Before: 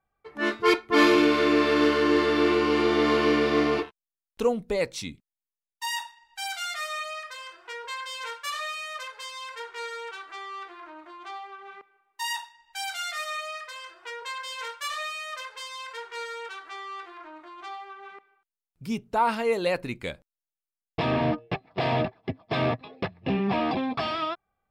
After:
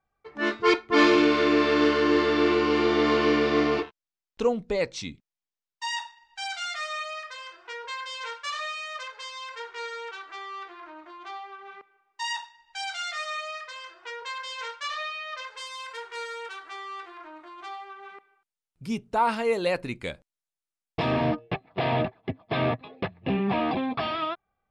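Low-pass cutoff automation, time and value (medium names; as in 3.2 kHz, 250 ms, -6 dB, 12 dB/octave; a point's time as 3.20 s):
low-pass 24 dB/octave
14.74 s 7 kHz
15.23 s 4.1 kHz
15.68 s 11 kHz
21.10 s 11 kHz
21.55 s 4.1 kHz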